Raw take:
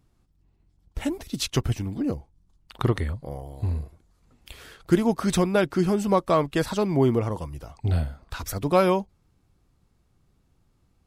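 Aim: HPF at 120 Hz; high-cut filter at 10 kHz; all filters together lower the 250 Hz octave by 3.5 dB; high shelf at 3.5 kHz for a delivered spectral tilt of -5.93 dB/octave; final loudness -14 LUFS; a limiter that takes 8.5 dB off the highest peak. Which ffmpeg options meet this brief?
-af "highpass=120,lowpass=10000,equalizer=f=250:t=o:g=-4.5,highshelf=f=3500:g=-6.5,volume=6.68,alimiter=limit=0.891:level=0:latency=1"

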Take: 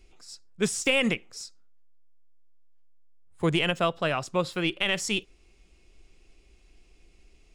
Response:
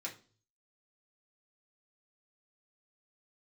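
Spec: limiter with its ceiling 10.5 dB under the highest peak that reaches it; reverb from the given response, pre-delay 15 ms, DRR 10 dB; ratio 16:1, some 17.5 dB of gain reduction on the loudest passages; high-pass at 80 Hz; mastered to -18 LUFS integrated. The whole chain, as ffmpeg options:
-filter_complex "[0:a]highpass=80,acompressor=threshold=0.0141:ratio=16,alimiter=level_in=3.16:limit=0.0631:level=0:latency=1,volume=0.316,asplit=2[s0][s1];[1:a]atrim=start_sample=2205,adelay=15[s2];[s1][s2]afir=irnorm=-1:irlink=0,volume=0.335[s3];[s0][s3]amix=inputs=2:normalize=0,volume=21.1"

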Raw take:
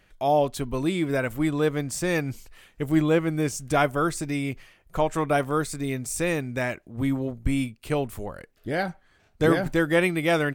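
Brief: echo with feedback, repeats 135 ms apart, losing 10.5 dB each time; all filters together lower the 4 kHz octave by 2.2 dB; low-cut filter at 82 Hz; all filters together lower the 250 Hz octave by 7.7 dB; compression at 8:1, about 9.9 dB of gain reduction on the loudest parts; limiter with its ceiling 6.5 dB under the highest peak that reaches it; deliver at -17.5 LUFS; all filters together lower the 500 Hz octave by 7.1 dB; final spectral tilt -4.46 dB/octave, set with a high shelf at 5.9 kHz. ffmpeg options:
-af "highpass=82,equalizer=f=250:t=o:g=-8.5,equalizer=f=500:t=o:g=-6.5,equalizer=f=4000:t=o:g=-4.5,highshelf=f=5900:g=5,acompressor=threshold=0.0282:ratio=8,alimiter=level_in=1.33:limit=0.0631:level=0:latency=1,volume=0.75,aecho=1:1:135|270|405:0.299|0.0896|0.0269,volume=9.44"

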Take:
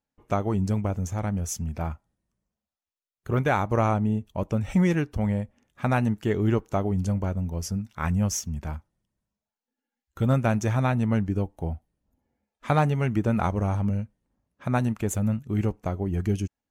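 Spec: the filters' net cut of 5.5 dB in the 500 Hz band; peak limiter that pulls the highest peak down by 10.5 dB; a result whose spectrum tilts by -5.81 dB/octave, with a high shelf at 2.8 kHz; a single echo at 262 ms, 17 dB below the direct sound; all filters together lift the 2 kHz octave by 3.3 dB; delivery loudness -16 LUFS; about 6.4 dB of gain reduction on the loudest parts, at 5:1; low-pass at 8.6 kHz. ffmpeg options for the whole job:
-af "lowpass=8600,equalizer=f=500:t=o:g=-7.5,equalizer=f=2000:t=o:g=6.5,highshelf=f=2800:g=-4,acompressor=threshold=0.0562:ratio=5,alimiter=limit=0.0668:level=0:latency=1,aecho=1:1:262:0.141,volume=7.94"

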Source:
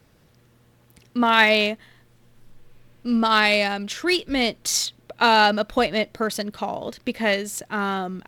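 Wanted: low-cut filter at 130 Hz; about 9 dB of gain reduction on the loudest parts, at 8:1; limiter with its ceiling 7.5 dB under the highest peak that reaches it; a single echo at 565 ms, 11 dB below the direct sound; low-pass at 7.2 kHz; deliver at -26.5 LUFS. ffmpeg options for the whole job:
-af "highpass=130,lowpass=7200,acompressor=threshold=0.0891:ratio=8,alimiter=limit=0.15:level=0:latency=1,aecho=1:1:565:0.282,volume=1.19"

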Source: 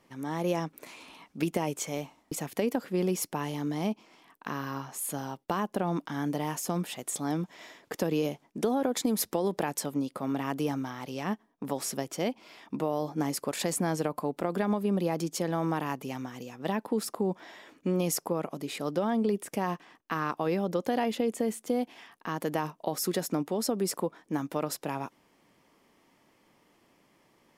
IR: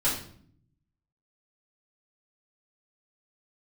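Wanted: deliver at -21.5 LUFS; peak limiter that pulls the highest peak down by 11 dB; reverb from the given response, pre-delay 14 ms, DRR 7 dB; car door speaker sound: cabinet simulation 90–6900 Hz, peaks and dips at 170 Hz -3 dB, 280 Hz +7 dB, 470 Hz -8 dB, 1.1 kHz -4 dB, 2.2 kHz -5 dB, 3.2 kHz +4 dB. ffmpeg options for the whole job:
-filter_complex "[0:a]alimiter=level_in=1.06:limit=0.0631:level=0:latency=1,volume=0.944,asplit=2[s0][s1];[1:a]atrim=start_sample=2205,adelay=14[s2];[s1][s2]afir=irnorm=-1:irlink=0,volume=0.133[s3];[s0][s3]amix=inputs=2:normalize=0,highpass=90,equalizer=f=170:t=q:w=4:g=-3,equalizer=f=280:t=q:w=4:g=7,equalizer=f=470:t=q:w=4:g=-8,equalizer=f=1100:t=q:w=4:g=-4,equalizer=f=2200:t=q:w=4:g=-5,equalizer=f=3200:t=q:w=4:g=4,lowpass=f=6900:w=0.5412,lowpass=f=6900:w=1.3066,volume=3.98"

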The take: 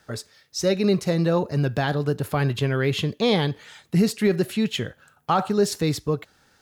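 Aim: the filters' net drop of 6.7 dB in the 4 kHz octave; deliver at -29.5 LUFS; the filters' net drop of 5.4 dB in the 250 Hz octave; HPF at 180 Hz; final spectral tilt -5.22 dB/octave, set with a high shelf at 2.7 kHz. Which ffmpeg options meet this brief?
-af "highpass=180,equalizer=f=250:t=o:g=-5,highshelf=f=2700:g=-5.5,equalizer=f=4000:t=o:g=-4,volume=0.75"

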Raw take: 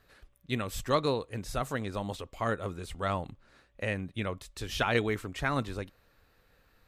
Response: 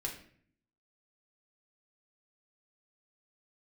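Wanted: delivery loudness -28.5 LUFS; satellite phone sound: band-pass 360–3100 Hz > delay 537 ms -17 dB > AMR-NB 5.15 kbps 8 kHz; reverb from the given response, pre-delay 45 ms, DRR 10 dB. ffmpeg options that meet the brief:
-filter_complex "[0:a]asplit=2[s0][s1];[1:a]atrim=start_sample=2205,adelay=45[s2];[s1][s2]afir=irnorm=-1:irlink=0,volume=0.282[s3];[s0][s3]amix=inputs=2:normalize=0,highpass=360,lowpass=3100,aecho=1:1:537:0.141,volume=2.51" -ar 8000 -c:a libopencore_amrnb -b:a 5150

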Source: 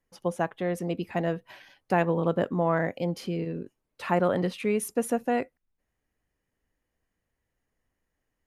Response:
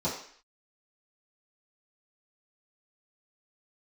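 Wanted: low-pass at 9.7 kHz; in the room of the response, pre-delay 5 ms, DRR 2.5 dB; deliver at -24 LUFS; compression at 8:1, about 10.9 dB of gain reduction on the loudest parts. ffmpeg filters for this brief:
-filter_complex "[0:a]lowpass=9700,acompressor=threshold=0.0282:ratio=8,asplit=2[s0][s1];[1:a]atrim=start_sample=2205,adelay=5[s2];[s1][s2]afir=irnorm=-1:irlink=0,volume=0.299[s3];[s0][s3]amix=inputs=2:normalize=0,volume=2.11"

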